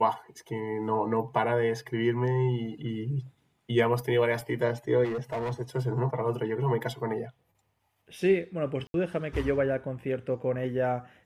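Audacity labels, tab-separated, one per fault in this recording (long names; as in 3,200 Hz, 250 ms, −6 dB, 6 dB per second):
5.040000	5.530000	clipping −28 dBFS
8.870000	8.940000	drop-out 72 ms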